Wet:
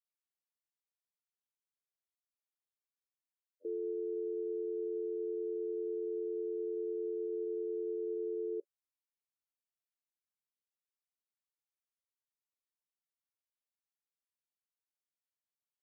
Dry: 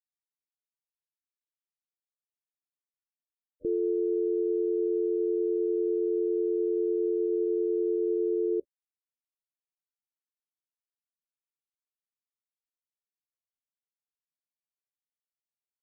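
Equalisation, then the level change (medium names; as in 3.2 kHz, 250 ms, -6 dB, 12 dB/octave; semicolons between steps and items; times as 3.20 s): high-pass 390 Hz 24 dB/octave; -7.0 dB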